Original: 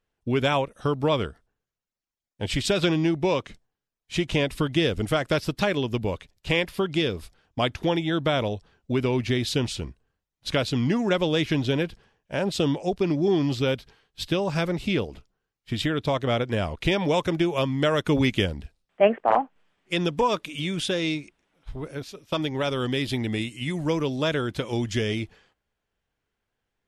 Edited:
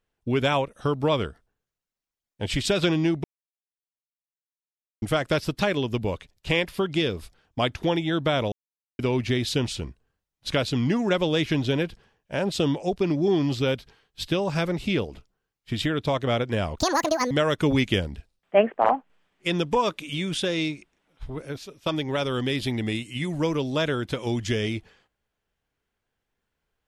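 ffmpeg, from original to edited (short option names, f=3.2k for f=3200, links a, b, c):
-filter_complex "[0:a]asplit=7[a][b][c][d][e][f][g];[a]atrim=end=3.24,asetpts=PTS-STARTPTS,afade=t=out:st=3.236:d=0.004:c=hsin[h];[b]atrim=start=3.24:end=5.02,asetpts=PTS-STARTPTS,volume=0[i];[c]atrim=start=5.02:end=8.52,asetpts=PTS-STARTPTS,afade=t=in:d=0.004:c=hsin,afade=t=out:st=3.496:d=0.004:c=hsin[j];[d]atrim=start=8.52:end=8.99,asetpts=PTS-STARTPTS,volume=0[k];[e]atrim=start=8.99:end=16.784,asetpts=PTS-STARTPTS,afade=t=in:d=0.004:c=hsin[l];[f]atrim=start=16.78:end=17.77,asetpts=PTS-STARTPTS,asetrate=82467,aresample=44100,atrim=end_sample=23347,asetpts=PTS-STARTPTS[m];[g]atrim=start=17.766[n];[h][i][j][k][l]concat=n=5:v=0:a=1[o];[o][m]acrossfade=d=0.004:c1=hsin:c2=hsin[p];[p][n]acrossfade=d=0.004:c1=hsin:c2=hsin"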